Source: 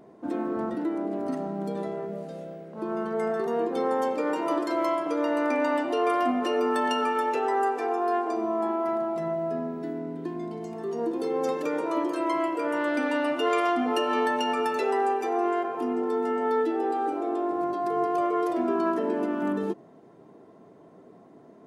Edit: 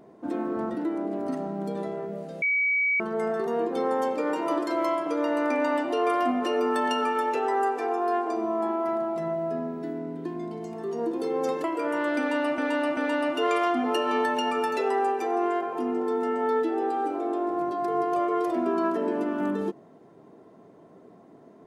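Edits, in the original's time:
2.42–3.00 s: bleep 2.27 kHz -21 dBFS
11.64–12.44 s: delete
12.99–13.38 s: loop, 3 plays

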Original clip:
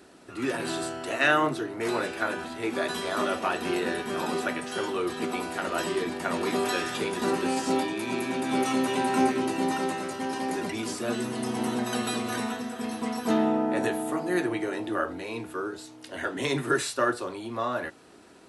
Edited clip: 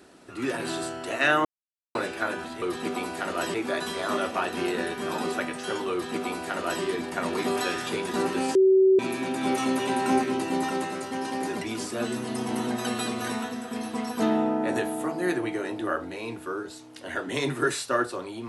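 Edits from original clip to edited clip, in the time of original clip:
1.45–1.95 s: mute
4.99–5.91 s: copy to 2.62 s
7.63–8.07 s: bleep 381 Hz -14.5 dBFS

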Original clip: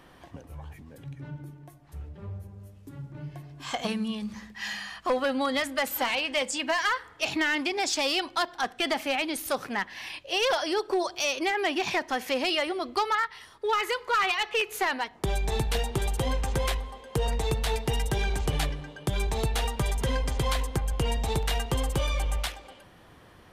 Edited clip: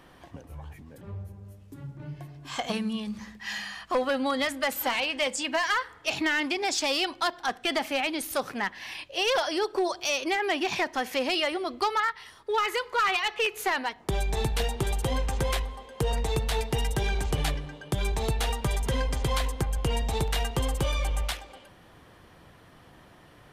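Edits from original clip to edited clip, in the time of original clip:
1.01–2.16 s: delete

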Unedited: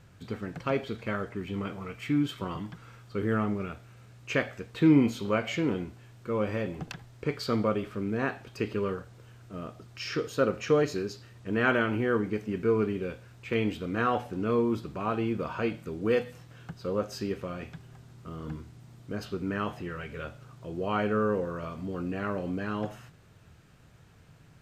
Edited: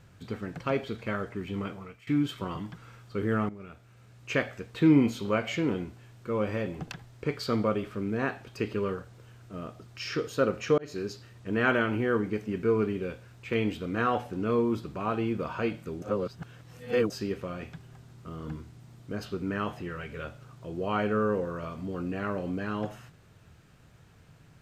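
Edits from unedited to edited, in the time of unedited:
1.64–2.07 s: fade out, to -19.5 dB
3.49–4.33 s: fade in, from -15 dB
10.78–11.06 s: fade in
16.02–17.10 s: reverse

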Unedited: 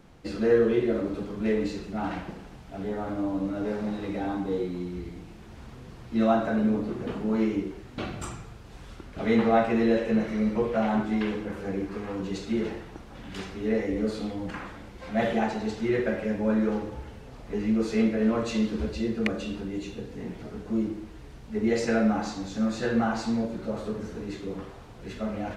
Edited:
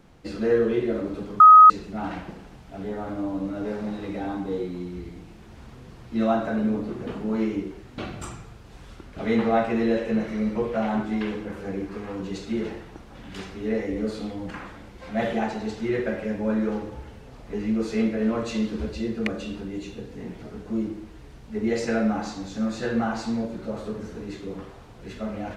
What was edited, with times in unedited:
1.40–1.70 s: bleep 1.26 kHz -6 dBFS

